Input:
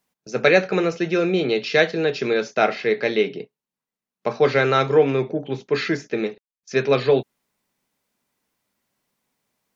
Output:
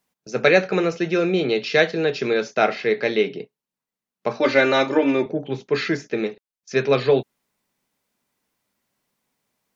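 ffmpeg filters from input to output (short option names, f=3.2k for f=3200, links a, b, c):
-filter_complex "[0:a]asettb=1/sr,asplit=3[a][b][c];[a]atrim=end=4.394[d];[b]atrim=start=4.39:end=5.26,asetpts=PTS-STARTPTS,afade=t=in:d=0.004:c=qsin,afade=t=out:st=0.866:d=0.004:c=qsin,aecho=1:1:3.4:0.94,atrim=end_sample=38367[e];[c]atrim=start=5.256[f];[d][e]acrossfade=d=0.004:c1=hsin:c2=qsin[g];[g][f]acrossfade=d=0.004:c1=qsin:c2=hsin"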